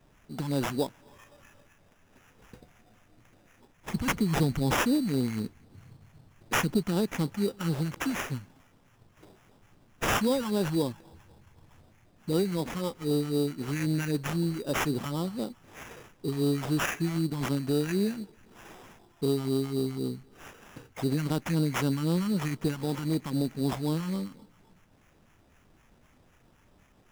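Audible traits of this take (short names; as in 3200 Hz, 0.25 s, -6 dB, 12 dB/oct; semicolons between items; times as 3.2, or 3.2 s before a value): phasing stages 2, 3.9 Hz, lowest notch 430–2900 Hz; aliases and images of a low sample rate 4300 Hz, jitter 0%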